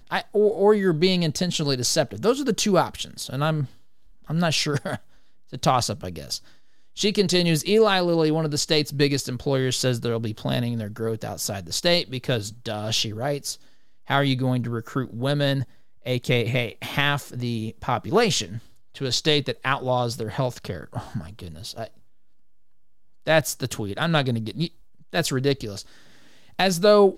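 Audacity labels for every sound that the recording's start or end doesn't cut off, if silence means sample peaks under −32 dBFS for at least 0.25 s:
4.300000	4.970000	sound
5.530000	6.370000	sound
6.970000	13.540000	sound
14.100000	15.630000	sound
16.060000	18.590000	sound
18.960000	21.860000	sound
23.270000	24.670000	sound
25.130000	25.810000	sound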